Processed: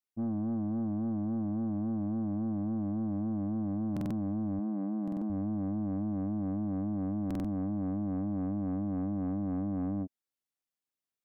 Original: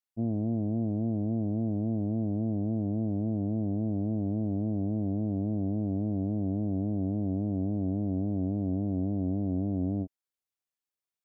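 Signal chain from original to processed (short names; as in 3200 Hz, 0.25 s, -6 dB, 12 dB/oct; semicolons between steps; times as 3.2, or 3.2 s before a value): bell 240 Hz +5.5 dB 0.93 oct; soft clip -26.5 dBFS, distortion -13 dB; 4.59–5.3 brick-wall FIR high-pass 160 Hz; stuck buffer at 3.92/5.03/7.26, samples 2048, times 3; gain -2.5 dB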